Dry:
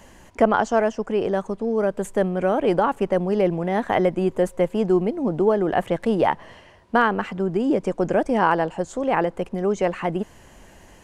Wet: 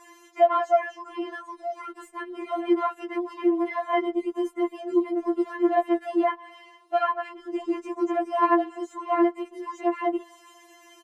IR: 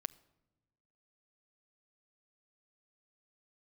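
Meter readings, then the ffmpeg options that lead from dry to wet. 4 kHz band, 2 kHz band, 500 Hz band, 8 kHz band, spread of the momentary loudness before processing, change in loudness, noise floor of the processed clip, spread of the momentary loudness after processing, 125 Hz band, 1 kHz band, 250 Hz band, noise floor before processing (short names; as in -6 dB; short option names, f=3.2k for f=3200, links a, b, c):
-6.0 dB, -7.5 dB, -6.0 dB, n/a, 5 LU, -4.0 dB, -55 dBFS, 13 LU, under -40 dB, -2.5 dB, -3.0 dB, -49 dBFS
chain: -filter_complex "[0:a]aeval=exprs='if(lt(val(0),0),0.708*val(0),val(0))':c=same,aecho=1:1:3.9:0.67,acrossover=split=2300[a][b];[b]acompressor=threshold=-53dB:ratio=6[c];[a][c]amix=inputs=2:normalize=0,highpass=150,afftfilt=real='re*4*eq(mod(b,16),0)':imag='im*4*eq(mod(b,16),0)':win_size=2048:overlap=0.75,volume=1dB"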